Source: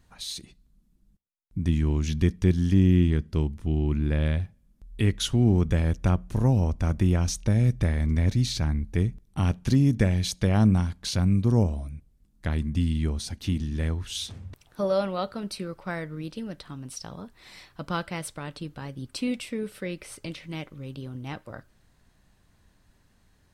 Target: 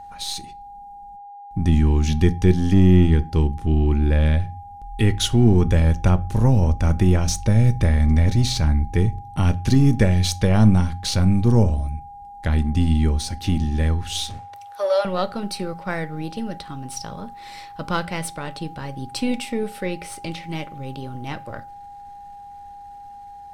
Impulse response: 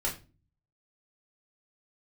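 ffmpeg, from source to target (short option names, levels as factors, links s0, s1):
-filter_complex "[0:a]aeval=exprs='if(lt(val(0),0),0.708*val(0),val(0))':c=same,aeval=exprs='val(0)+0.00631*sin(2*PI*810*n/s)':c=same,asettb=1/sr,asplit=3[s0][s1][s2];[s0]atrim=end=14.394[s3];[s1]atrim=start=14.39:end=15.05,asetpts=PTS-STARTPTS,afade=t=in:d=0.004:c=qsin,afade=t=out:st=0.656:d=0.004:c=qsin,highpass=f=530:w=0.5412,highpass=f=530:w=1.3066[s4];[s2]atrim=start=15.046[s5];[s3][s4]acrossfade=d=0.004:c1=hsin:c2=qsin[s6];[s6][s5]acrossfade=d=0.004:c1=qsin:c2=hsin,asplit=2[s7][s8];[1:a]atrim=start_sample=2205[s9];[s8][s9]afir=irnorm=-1:irlink=0,volume=0.133[s10];[s7][s10]amix=inputs=2:normalize=0,volume=2.11"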